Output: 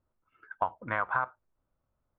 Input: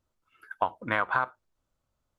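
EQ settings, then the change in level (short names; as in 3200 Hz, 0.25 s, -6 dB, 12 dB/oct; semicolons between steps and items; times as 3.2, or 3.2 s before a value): LPF 1600 Hz 12 dB/oct; dynamic EQ 310 Hz, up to -8 dB, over -46 dBFS, Q 0.76; 0.0 dB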